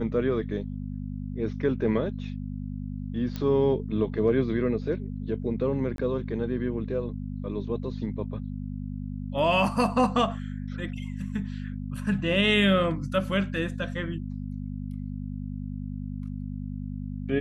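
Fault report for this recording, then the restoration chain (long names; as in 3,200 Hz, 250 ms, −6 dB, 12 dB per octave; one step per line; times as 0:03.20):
mains hum 50 Hz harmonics 5 −34 dBFS
0:03.36: click −19 dBFS
0:05.96–0:05.98: drop-out 22 ms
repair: click removal
hum removal 50 Hz, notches 5
repair the gap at 0:05.96, 22 ms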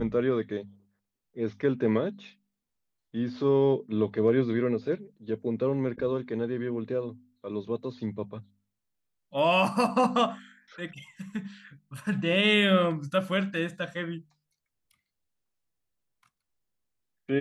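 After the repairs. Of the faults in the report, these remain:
none of them is left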